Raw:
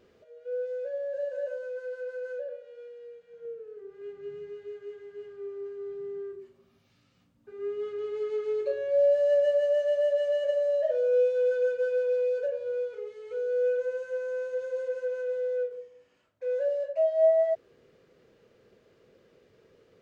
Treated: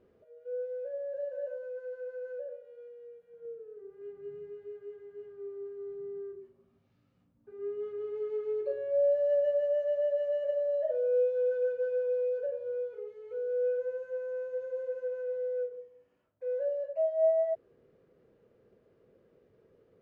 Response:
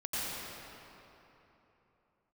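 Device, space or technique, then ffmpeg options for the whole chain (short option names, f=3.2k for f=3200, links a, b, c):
through cloth: -af "highshelf=f=2k:g=-17,volume=-2.5dB"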